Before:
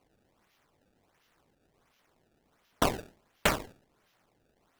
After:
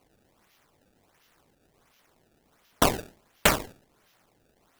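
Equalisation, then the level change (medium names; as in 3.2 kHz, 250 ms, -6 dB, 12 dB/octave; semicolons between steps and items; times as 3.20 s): treble shelf 6 kHz +6 dB; +4.5 dB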